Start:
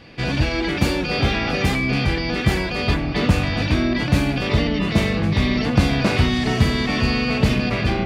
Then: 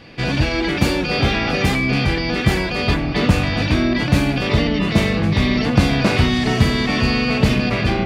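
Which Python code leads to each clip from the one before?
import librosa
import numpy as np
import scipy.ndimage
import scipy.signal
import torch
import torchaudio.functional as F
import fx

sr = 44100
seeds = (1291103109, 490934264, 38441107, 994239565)

y = fx.peak_eq(x, sr, hz=65.0, db=-3.5, octaves=0.65)
y = F.gain(torch.from_numpy(y), 2.5).numpy()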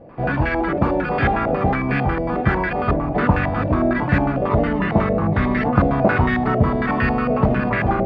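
y = fx.filter_held_lowpass(x, sr, hz=11.0, low_hz=620.0, high_hz=1700.0)
y = F.gain(torch.from_numpy(y), -2.5).numpy()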